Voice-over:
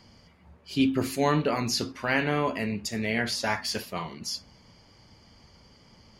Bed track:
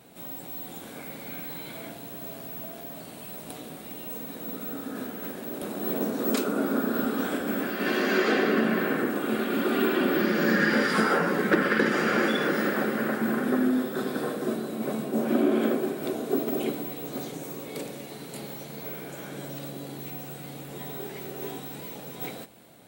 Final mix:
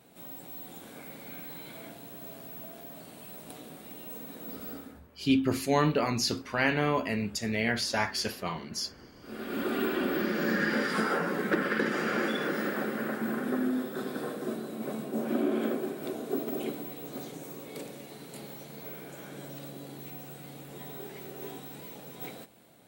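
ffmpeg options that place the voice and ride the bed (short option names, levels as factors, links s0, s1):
-filter_complex "[0:a]adelay=4500,volume=0.891[s0];[1:a]volume=6.68,afade=t=out:st=4.72:d=0.29:silence=0.0794328,afade=t=in:st=9.21:d=0.41:silence=0.0794328[s1];[s0][s1]amix=inputs=2:normalize=0"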